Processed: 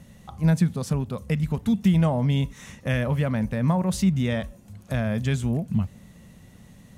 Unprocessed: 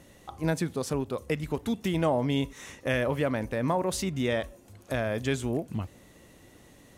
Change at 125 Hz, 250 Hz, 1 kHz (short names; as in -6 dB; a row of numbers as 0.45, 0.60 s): +10.0, +6.5, -0.5 dB